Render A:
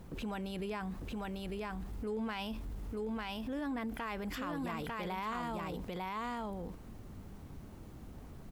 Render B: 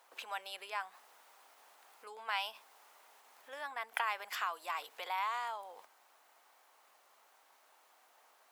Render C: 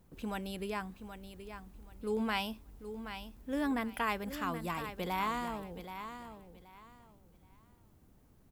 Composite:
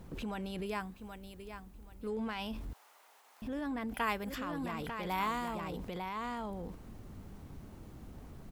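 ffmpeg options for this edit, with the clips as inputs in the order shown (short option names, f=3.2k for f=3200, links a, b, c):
-filter_complex "[2:a]asplit=3[a][b][c];[0:a]asplit=5[d][e][f][g][h];[d]atrim=end=0.662[i];[a]atrim=start=0.658:end=2.072[j];[e]atrim=start=2.068:end=2.732[k];[1:a]atrim=start=2.728:end=3.422[l];[f]atrim=start=3.418:end=3.942[m];[b]atrim=start=3.938:end=4.342[n];[g]atrim=start=4.338:end=5.092[o];[c]atrim=start=5.088:end=5.552[p];[h]atrim=start=5.548[q];[i][j]acrossfade=d=0.004:c1=hsin:c2=hsin[r];[r][k]acrossfade=d=0.004:c1=hsin:c2=hsin[s];[s][l]acrossfade=d=0.004:c1=hsin:c2=hsin[t];[t][m]acrossfade=d=0.004:c1=hsin:c2=hsin[u];[u][n]acrossfade=d=0.004:c1=hsin:c2=hsin[v];[v][o]acrossfade=d=0.004:c1=hsin:c2=hsin[w];[w][p]acrossfade=d=0.004:c1=hsin:c2=hsin[x];[x][q]acrossfade=d=0.004:c1=hsin:c2=hsin"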